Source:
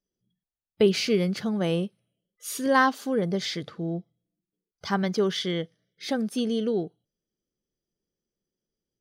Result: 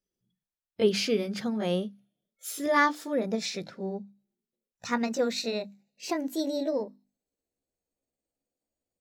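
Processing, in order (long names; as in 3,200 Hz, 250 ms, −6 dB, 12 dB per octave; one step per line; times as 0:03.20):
pitch glide at a constant tempo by +6 semitones starting unshifted
mains-hum notches 50/100/150/200/250/300 Hz
level −1.5 dB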